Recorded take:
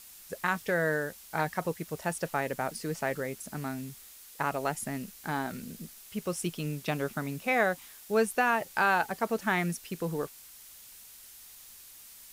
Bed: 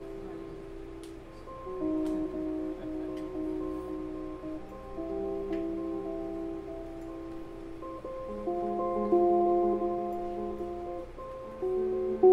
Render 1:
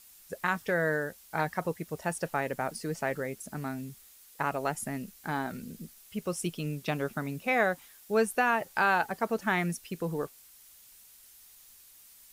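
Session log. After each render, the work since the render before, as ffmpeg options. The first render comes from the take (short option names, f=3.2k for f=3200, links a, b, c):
-af "afftdn=nr=6:nf=-51"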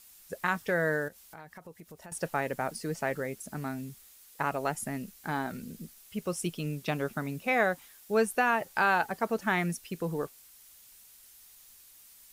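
-filter_complex "[0:a]asettb=1/sr,asplit=3[a][b][c];[a]atrim=end=1.084[d];[b]atrim=start=1.08:end=2.12,asetpts=PTS-STARTPTS,afade=t=in:d=0.004:c=qsin,afade=t=out:st=1.036:d=0.004:c=qsin,acompressor=threshold=-47dB:ratio=4:attack=3.2:release=140:knee=1:detection=peak[e];[c]atrim=start=2.116[f];[d][e]acrossfade=d=0.004:c1=hsin:c2=qsin[g];[g][f]acrossfade=d=0.004:c1=qsin:c2=hsin"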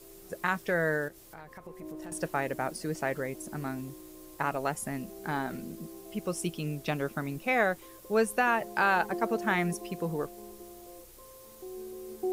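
-filter_complex "[1:a]volume=-12dB[a];[0:a][a]amix=inputs=2:normalize=0"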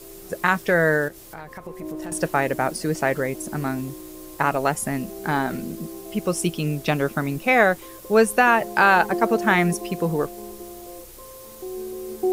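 -af "volume=9.5dB"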